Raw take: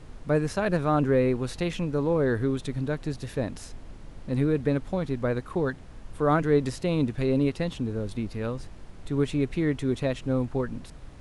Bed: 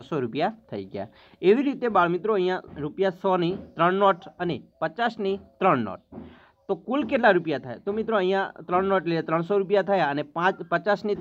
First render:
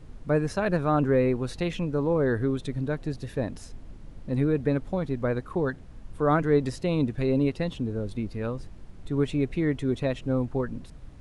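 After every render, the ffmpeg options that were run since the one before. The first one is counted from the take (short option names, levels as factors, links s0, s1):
-af "afftdn=nr=6:nf=-45"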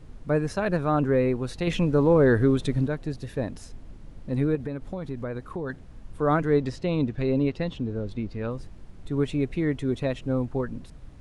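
-filter_complex "[0:a]asettb=1/sr,asplit=3[s0][s1][s2];[s0]atrim=end=1.674[s3];[s1]atrim=start=1.67:end=2.87,asetpts=PTS-STARTPTS,afade=t=in:d=0.004:c=qsin,afade=t=out:st=1.196:d=0.004:c=qsin,acontrast=45[s4];[s2]atrim=start=2.866[s5];[s3][s4]acrossfade=d=0.004:c1=hsin:c2=qsin[s6];[s6][s5]acrossfade=d=0.004:c1=qsin:c2=hsin,asettb=1/sr,asplit=3[s7][s8][s9];[s7]atrim=end=4.554[s10];[s8]atrim=start=4.55:end=5.7,asetpts=PTS-STARTPTS,afade=t=in:d=0.004:c=qsin,afade=t=out:st=1.146:d=0.004:c=qsin,acompressor=threshold=0.0398:ratio=4:attack=3.2:release=140:knee=1:detection=peak[s11];[s9]atrim=start=5.696[s12];[s10][s11]acrossfade=d=0.004:c1=hsin:c2=qsin[s13];[s13][s12]acrossfade=d=0.004:c1=qsin:c2=hsin,asettb=1/sr,asplit=3[s14][s15][s16];[s14]atrim=end=6.604[s17];[s15]atrim=start=6.6:end=8.51,asetpts=PTS-STARTPTS,afade=t=in:d=0.004:c=qsin,afade=t=out:st=1.906:d=0.004:c=qsin,lowpass=5900[s18];[s16]atrim=start=8.506[s19];[s17][s18]acrossfade=d=0.004:c1=hsin:c2=qsin[s20];[s20][s19]acrossfade=d=0.004:c1=qsin:c2=hsin"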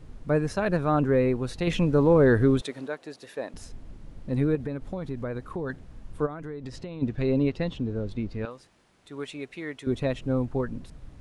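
-filter_complex "[0:a]asettb=1/sr,asplit=3[s0][s1][s2];[s0]atrim=end=2.614[s3];[s1]atrim=start=2.61:end=3.54,asetpts=PTS-STARTPTS,afade=t=in:d=0.004:c=qsin,afade=t=out:st=0.926:d=0.004:c=qsin,highpass=470[s4];[s2]atrim=start=3.536[s5];[s3][s4]acrossfade=d=0.004:c1=hsin:c2=qsin[s6];[s6][s5]acrossfade=d=0.004:c1=qsin:c2=hsin,asplit=3[s7][s8][s9];[s7]afade=t=out:st=6.25:d=0.02[s10];[s8]acompressor=threshold=0.0251:ratio=16:attack=3.2:release=140:knee=1:detection=peak,afade=t=in:st=6.25:d=0.02,afade=t=out:st=7.01:d=0.02[s11];[s9]afade=t=in:st=7.01:d=0.02[s12];[s10][s11][s12]amix=inputs=3:normalize=0,asettb=1/sr,asplit=3[s13][s14][s15];[s13]atrim=end=8.454[s16];[s14]atrim=start=8.45:end=9.87,asetpts=PTS-STARTPTS,afade=t=in:d=0.004:c=qsin,afade=t=out:st=1.416:d=0.004:c=qsin,highpass=f=1100:p=1[s17];[s15]atrim=start=9.866[s18];[s16][s17]acrossfade=d=0.004:c1=hsin:c2=qsin[s19];[s19][s18]acrossfade=d=0.004:c1=qsin:c2=hsin"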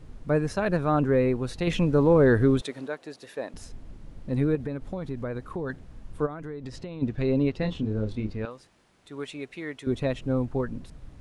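-filter_complex "[0:a]asettb=1/sr,asplit=3[s0][s1][s2];[s0]atrim=end=7.594[s3];[s1]atrim=start=7.59:end=8.32,asetpts=PTS-STARTPTS,afade=t=in:d=0.004:c=qsin,afade=t=out:st=0.726:d=0.004:c=qsin,asplit=2[s4][s5];[s5]adelay=28,volume=0.562[s6];[s4][s6]amix=inputs=2:normalize=0,atrim=end_sample=32193[s7];[s2]atrim=start=8.316[s8];[s3][s7]acrossfade=d=0.004:c1=hsin:c2=qsin[s9];[s9][s8]acrossfade=d=0.004:c1=qsin:c2=hsin"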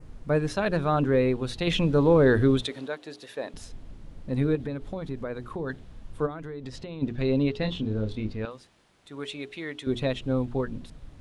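-af "bandreject=f=60:t=h:w=6,bandreject=f=120:t=h:w=6,bandreject=f=180:t=h:w=6,bandreject=f=240:t=h:w=6,bandreject=f=300:t=h:w=6,bandreject=f=360:t=h:w=6,bandreject=f=420:t=h:w=6,adynamicequalizer=threshold=0.00178:dfrequency=3500:dqfactor=2:tfrequency=3500:tqfactor=2:attack=5:release=100:ratio=0.375:range=4:mode=boostabove:tftype=bell"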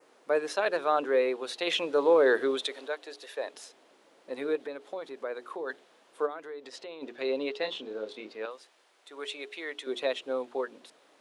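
-af "highpass=f=400:w=0.5412,highpass=f=400:w=1.3066"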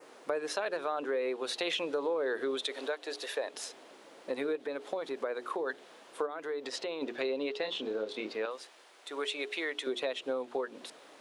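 -filter_complex "[0:a]asplit=2[s0][s1];[s1]alimiter=limit=0.075:level=0:latency=1,volume=1.26[s2];[s0][s2]amix=inputs=2:normalize=0,acompressor=threshold=0.0251:ratio=4"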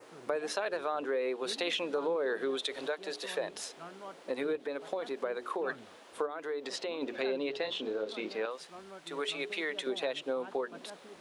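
-filter_complex "[1:a]volume=0.0447[s0];[0:a][s0]amix=inputs=2:normalize=0"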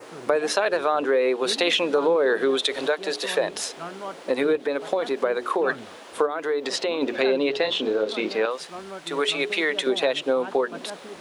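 -af "volume=3.76"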